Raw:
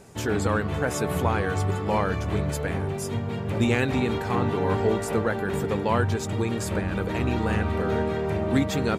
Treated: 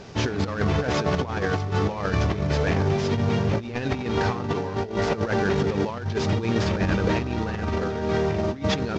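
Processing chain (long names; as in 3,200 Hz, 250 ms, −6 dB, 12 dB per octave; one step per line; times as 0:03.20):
variable-slope delta modulation 32 kbit/s
compressor whose output falls as the input rises −28 dBFS, ratio −0.5
level +4.5 dB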